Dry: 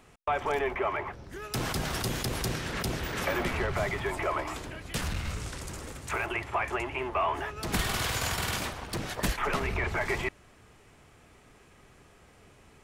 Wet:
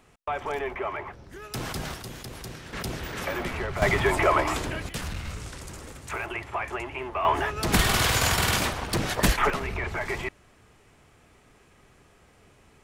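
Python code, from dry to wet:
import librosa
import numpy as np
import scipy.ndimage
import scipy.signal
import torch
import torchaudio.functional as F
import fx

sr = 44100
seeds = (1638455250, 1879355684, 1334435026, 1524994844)

y = fx.gain(x, sr, db=fx.steps((0.0, -1.5), (1.94, -8.0), (2.73, -1.0), (3.82, 9.0), (4.89, -1.0), (7.25, 7.5), (9.5, -0.5)))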